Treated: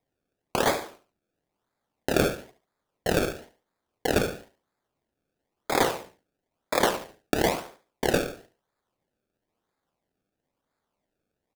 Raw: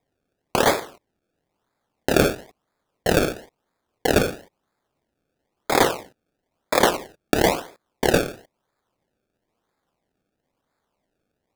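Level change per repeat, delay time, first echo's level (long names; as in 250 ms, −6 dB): −9.5 dB, 71 ms, −13.0 dB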